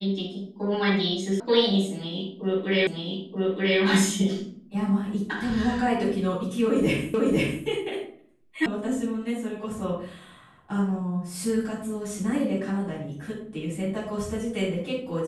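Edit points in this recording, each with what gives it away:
1.40 s: sound stops dead
2.87 s: repeat of the last 0.93 s
7.14 s: repeat of the last 0.5 s
8.66 s: sound stops dead

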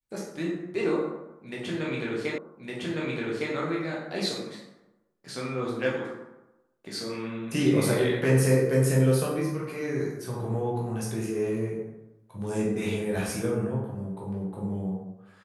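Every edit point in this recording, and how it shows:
2.38 s: repeat of the last 1.16 s

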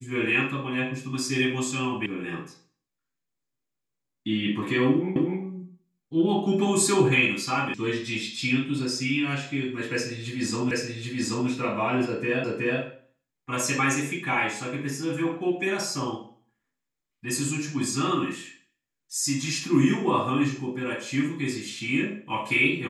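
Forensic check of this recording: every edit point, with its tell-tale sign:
2.06 s: sound stops dead
5.16 s: repeat of the last 0.25 s
7.74 s: sound stops dead
10.71 s: repeat of the last 0.78 s
12.44 s: repeat of the last 0.37 s

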